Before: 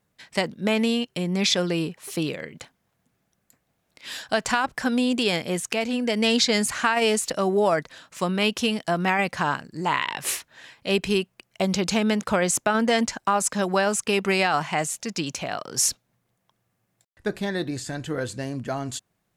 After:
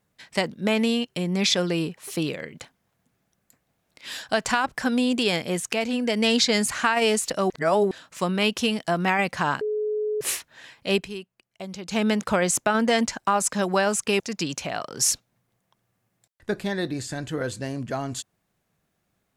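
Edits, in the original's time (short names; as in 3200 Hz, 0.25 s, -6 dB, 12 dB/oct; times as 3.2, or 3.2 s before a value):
7.5–7.91 reverse
9.61–10.21 bleep 425 Hz -23 dBFS
10.96–12 dip -12.5 dB, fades 0.12 s
14.2–14.97 cut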